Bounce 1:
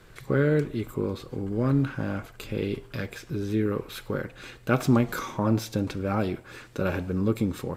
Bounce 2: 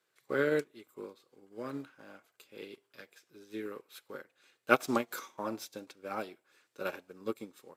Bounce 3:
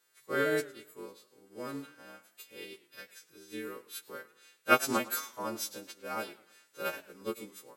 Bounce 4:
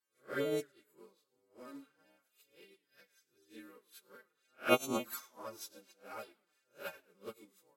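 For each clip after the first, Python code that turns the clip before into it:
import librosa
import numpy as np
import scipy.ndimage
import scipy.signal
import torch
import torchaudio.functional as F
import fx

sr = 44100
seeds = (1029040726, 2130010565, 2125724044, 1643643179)

y1 = scipy.signal.sosfilt(scipy.signal.butter(2, 370.0, 'highpass', fs=sr, output='sos'), x)
y1 = fx.high_shelf(y1, sr, hz=3100.0, db=7.5)
y1 = fx.upward_expand(y1, sr, threshold_db=-39.0, expansion=2.5)
y1 = y1 * librosa.db_to_amplitude(2.5)
y2 = fx.freq_snap(y1, sr, grid_st=2)
y2 = fx.echo_warbled(y2, sr, ms=108, feedback_pct=40, rate_hz=2.8, cents=167, wet_db=-19.5)
y3 = fx.spec_swells(y2, sr, rise_s=0.31)
y3 = fx.env_flanger(y3, sr, rest_ms=9.1, full_db=-25.0)
y3 = fx.upward_expand(y3, sr, threshold_db=-52.0, expansion=1.5)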